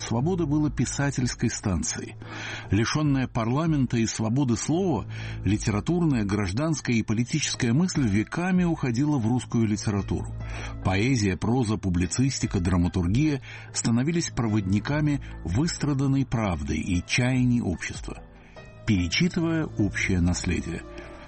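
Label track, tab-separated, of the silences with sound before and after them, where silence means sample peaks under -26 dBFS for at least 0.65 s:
18.120000	18.880000	silence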